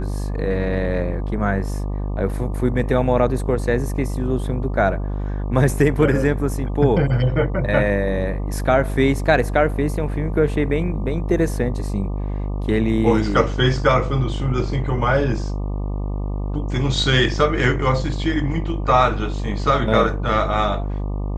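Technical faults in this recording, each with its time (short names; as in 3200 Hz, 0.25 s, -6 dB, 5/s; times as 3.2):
buzz 50 Hz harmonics 24 -24 dBFS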